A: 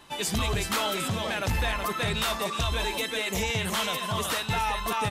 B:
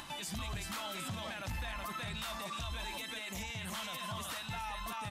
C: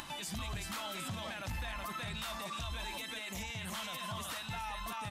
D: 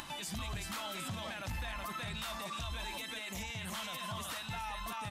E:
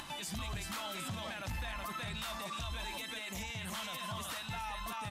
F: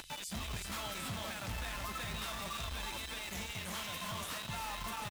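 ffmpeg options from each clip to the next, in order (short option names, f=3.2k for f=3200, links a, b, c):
-af "equalizer=f=430:t=o:w=0.44:g=-12.5,acompressor=mode=upward:threshold=-32dB:ratio=2.5,alimiter=level_in=2dB:limit=-24dB:level=0:latency=1:release=46,volume=-2dB,volume=-6.5dB"
-af "acompressor=mode=upward:threshold=-44dB:ratio=2.5"
-af anull
-af "asoftclip=type=hard:threshold=-33dB"
-filter_complex "[0:a]aecho=1:1:327|654|981|1308|1635:0.376|0.165|0.0728|0.032|0.0141,acrossover=split=100|2800[a][b][c];[b]acrusher=bits=6:mix=0:aa=0.000001[d];[a][d][c]amix=inputs=3:normalize=0,volume=-1.5dB"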